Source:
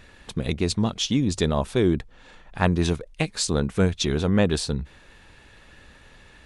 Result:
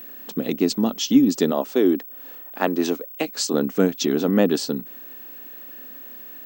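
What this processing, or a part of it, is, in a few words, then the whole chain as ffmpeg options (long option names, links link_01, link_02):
old television with a line whistle: -filter_complex "[0:a]asettb=1/sr,asplit=3[link_01][link_02][link_03];[link_01]atrim=end=1.514[link_04];[link_02]atrim=start=1.51:end=3.53,asetpts=PTS-STARTPTS,afade=type=in:duration=0.004:curve=qsin,afade=type=out:start_time=2.016:duration=0.004:curve=qsin,highpass=280[link_05];[link_03]atrim=start=3.526[link_06];[link_04][link_05]acrossfade=duration=0.004:curve1=hsin:curve2=qsin[link_07];[link_07][link_06]acrossfade=duration=0.004:curve1=qsin:curve2=hsin,highpass=frequency=210:width=0.5412,highpass=frequency=210:width=1.3066,equalizer=frequency=270:width_type=q:width=4:gain=8,equalizer=frequency=1000:width_type=q:width=4:gain=-5,equalizer=frequency=1600:width_type=q:width=4:gain=-4,equalizer=frequency=2300:width_type=q:width=4:gain=-7,equalizer=frequency=3700:width_type=q:width=4:gain=-7,lowpass=frequency=7400:width=0.5412,lowpass=frequency=7400:width=1.3066,aeval=exprs='val(0)+0.01*sin(2*PI*15734*n/s)':channel_layout=same,volume=3.5dB"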